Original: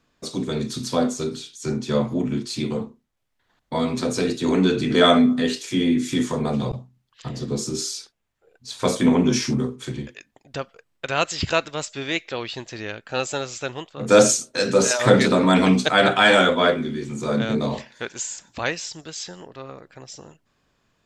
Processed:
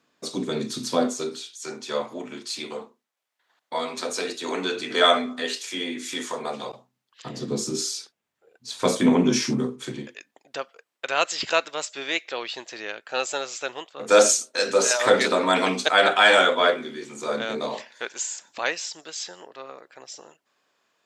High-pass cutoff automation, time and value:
0.95 s 220 Hz
1.57 s 580 Hz
6.76 s 580 Hz
7.46 s 180 Hz
9.81 s 180 Hz
10.57 s 450 Hz

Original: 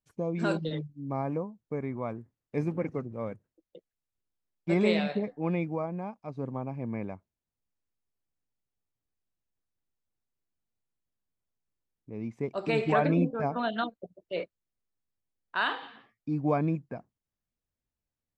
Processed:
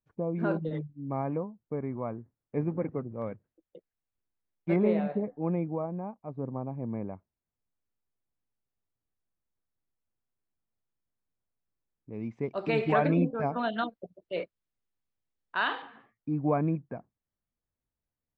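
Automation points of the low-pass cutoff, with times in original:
1.4 kHz
from 0.75 s 2.4 kHz
from 1.43 s 1.5 kHz
from 3.22 s 2.4 kHz
from 4.76 s 1.1 kHz
from 7.13 s 1.9 kHz
from 12.12 s 4 kHz
from 15.82 s 1.9 kHz

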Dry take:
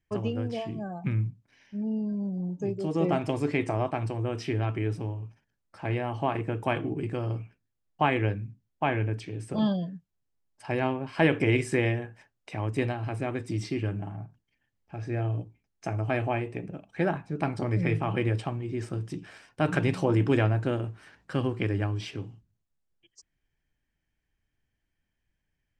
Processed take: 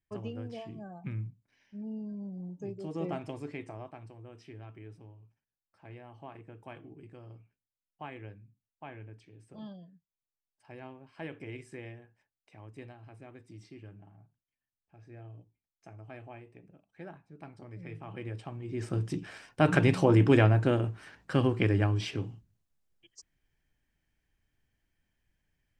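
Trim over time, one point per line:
3.06 s -9 dB
4.14 s -19 dB
17.76 s -19 dB
18.48 s -10 dB
18.98 s +2 dB

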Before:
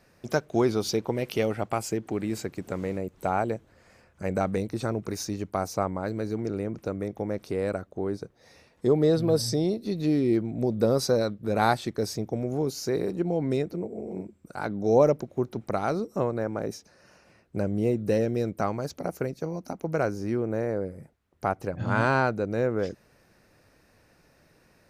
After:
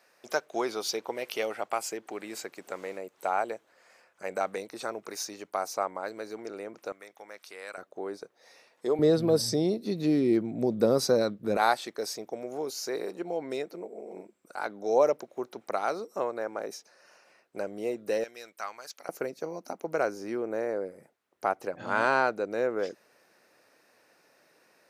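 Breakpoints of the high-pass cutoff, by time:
580 Hz
from 6.92 s 1.3 kHz
from 7.78 s 500 Hz
from 8.99 s 180 Hz
from 11.57 s 520 Hz
from 18.24 s 1.4 kHz
from 19.09 s 390 Hz

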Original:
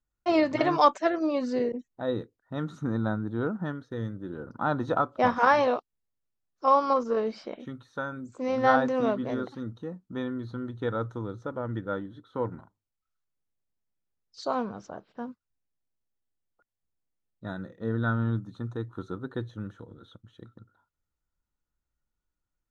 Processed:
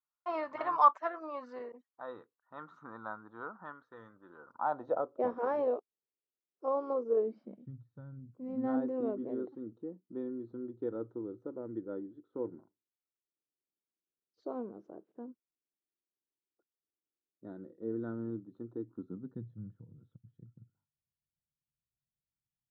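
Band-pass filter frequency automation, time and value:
band-pass filter, Q 3.2
4.49 s 1.1 kHz
5.16 s 410 Hz
7.19 s 410 Hz
7.71 s 120 Hz
8.21 s 120 Hz
8.88 s 350 Hz
18.70 s 350 Hz
19.61 s 140 Hz

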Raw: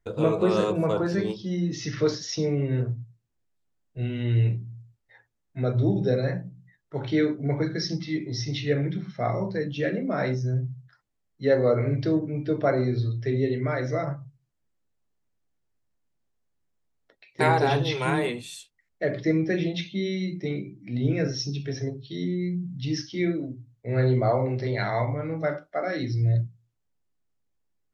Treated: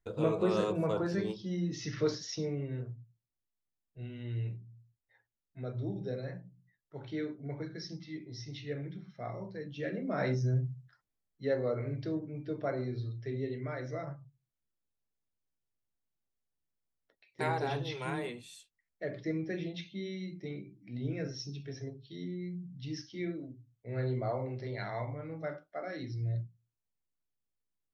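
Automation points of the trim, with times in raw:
2.20 s -7 dB
2.89 s -14 dB
9.57 s -14 dB
10.43 s -3 dB
11.71 s -11.5 dB

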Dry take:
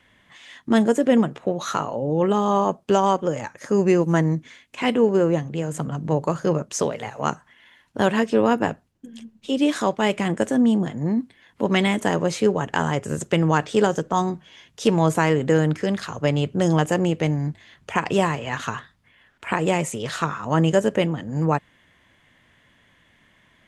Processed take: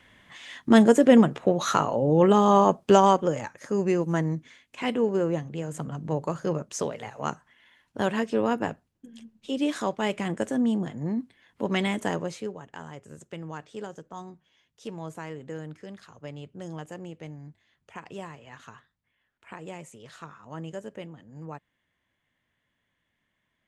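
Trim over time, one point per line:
2.99 s +1.5 dB
3.71 s -6.5 dB
12.12 s -6.5 dB
12.62 s -19 dB

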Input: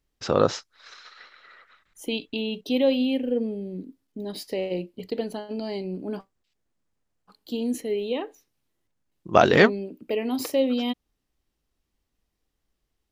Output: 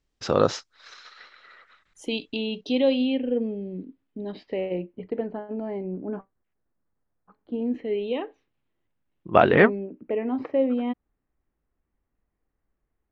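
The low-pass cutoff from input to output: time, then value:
low-pass 24 dB/octave
2.21 s 8.3 kHz
3.36 s 3.2 kHz
4.23 s 3.2 kHz
5.38 s 1.8 kHz
7.53 s 1.8 kHz
7.98 s 3.2 kHz
9.38 s 3.2 kHz
9.82 s 2 kHz

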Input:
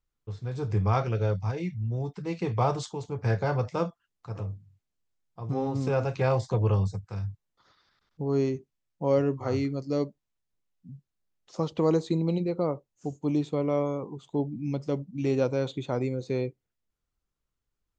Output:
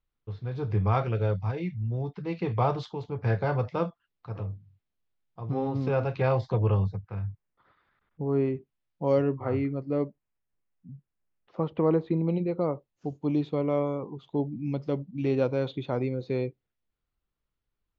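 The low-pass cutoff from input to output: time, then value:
low-pass 24 dB/octave
6.49 s 4.1 kHz
7.29 s 2.6 kHz
8.43 s 2.6 kHz
9.11 s 5.5 kHz
9.36 s 2.6 kHz
12.22 s 2.6 kHz
12.74 s 4.2 kHz

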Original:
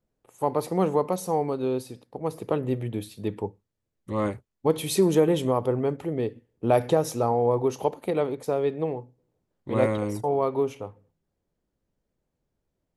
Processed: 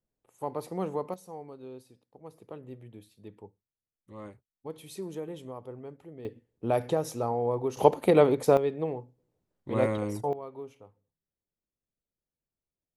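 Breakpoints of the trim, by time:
-9 dB
from 1.14 s -17.5 dB
from 6.25 s -6 dB
from 7.77 s +5.5 dB
from 8.57 s -3.5 dB
from 10.33 s -16.5 dB

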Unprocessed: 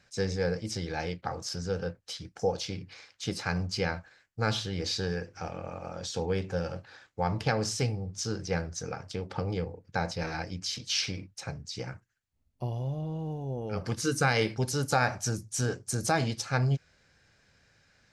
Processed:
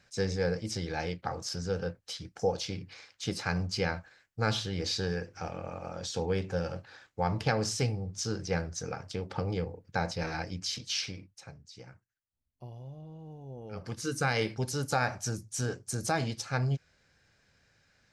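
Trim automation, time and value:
10.75 s -0.5 dB
11.59 s -12 dB
13.20 s -12 dB
14.33 s -3 dB

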